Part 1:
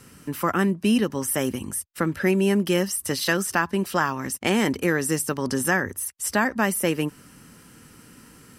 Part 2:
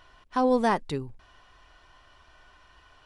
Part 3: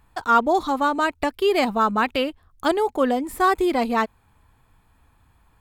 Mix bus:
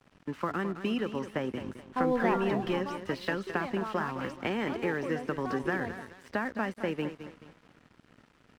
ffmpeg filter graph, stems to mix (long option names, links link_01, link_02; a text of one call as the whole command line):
ffmpeg -i stem1.wav -i stem2.wav -i stem3.wav -filter_complex "[0:a]acrossover=split=300|4400[link_01][link_02][link_03];[link_01]acompressor=threshold=-35dB:ratio=4[link_04];[link_02]acompressor=threshold=-27dB:ratio=4[link_05];[link_03]acompressor=threshold=-40dB:ratio=4[link_06];[link_04][link_05][link_06]amix=inputs=3:normalize=0,volume=-2.5dB,asplit=3[link_07][link_08][link_09];[link_08]volume=-10.5dB[link_10];[1:a]adelay=1600,volume=-5.5dB,asplit=2[link_11][link_12];[link_12]volume=-9.5dB[link_13];[2:a]alimiter=limit=-15dB:level=0:latency=1,adelay=2050,volume=-14.5dB[link_14];[link_09]apad=whole_len=337569[link_15];[link_14][link_15]sidechaingate=range=-33dB:threshold=-39dB:ratio=16:detection=peak[link_16];[link_10][link_13]amix=inputs=2:normalize=0,aecho=0:1:214|428|642|856|1070|1284:1|0.43|0.185|0.0795|0.0342|0.0147[link_17];[link_07][link_11][link_16][link_17]amix=inputs=4:normalize=0,lowpass=2700,aeval=exprs='sgn(val(0))*max(abs(val(0))-0.00266,0)':channel_layout=same" out.wav